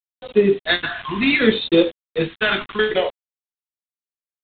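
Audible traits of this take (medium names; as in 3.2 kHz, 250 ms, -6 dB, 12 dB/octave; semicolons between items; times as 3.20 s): a quantiser's noise floor 6-bit, dither none; phasing stages 2, 0.69 Hz, lowest notch 480–1600 Hz; G.726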